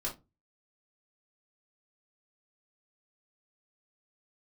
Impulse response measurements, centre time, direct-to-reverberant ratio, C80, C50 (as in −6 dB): 19 ms, −5.0 dB, 21.0 dB, 11.0 dB